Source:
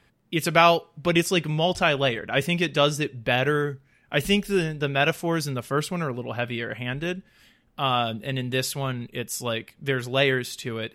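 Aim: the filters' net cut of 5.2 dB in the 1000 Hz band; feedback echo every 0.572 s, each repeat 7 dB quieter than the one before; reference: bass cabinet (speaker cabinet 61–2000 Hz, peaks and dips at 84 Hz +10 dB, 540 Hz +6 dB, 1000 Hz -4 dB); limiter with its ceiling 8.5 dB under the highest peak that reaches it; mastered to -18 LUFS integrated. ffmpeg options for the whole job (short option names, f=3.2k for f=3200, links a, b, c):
-af "equalizer=f=1k:t=o:g=-7.5,alimiter=limit=-15.5dB:level=0:latency=1,highpass=f=61:w=0.5412,highpass=f=61:w=1.3066,equalizer=f=84:t=q:w=4:g=10,equalizer=f=540:t=q:w=4:g=6,equalizer=f=1k:t=q:w=4:g=-4,lowpass=f=2k:w=0.5412,lowpass=f=2k:w=1.3066,aecho=1:1:572|1144|1716|2288|2860:0.447|0.201|0.0905|0.0407|0.0183,volume=9.5dB"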